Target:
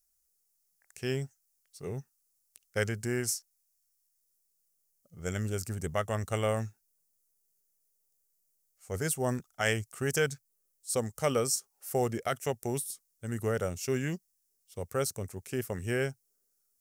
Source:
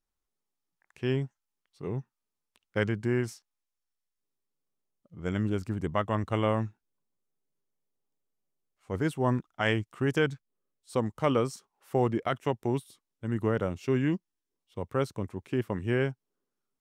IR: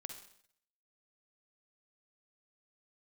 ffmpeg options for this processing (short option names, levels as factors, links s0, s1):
-af "equalizer=f=300:t=o:w=0.39:g=-7,aexciter=amount=6.9:drive=4.3:freq=5000,equalizer=f=125:t=o:w=0.33:g=-5,equalizer=f=200:t=o:w=0.33:g=-7,equalizer=f=315:t=o:w=0.33:g=-5,equalizer=f=1000:t=o:w=0.33:g=-11"